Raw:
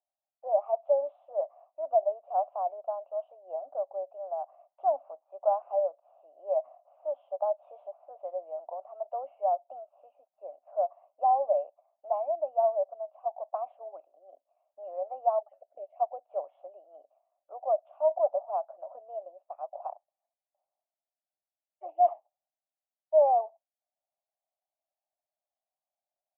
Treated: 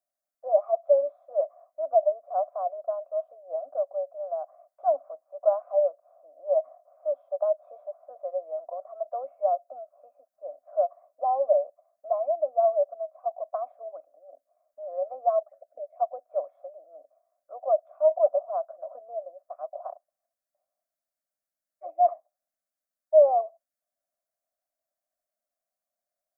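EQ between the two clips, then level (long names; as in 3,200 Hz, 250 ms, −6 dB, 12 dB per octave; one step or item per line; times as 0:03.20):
phaser with its sweep stopped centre 580 Hz, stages 8
+5.0 dB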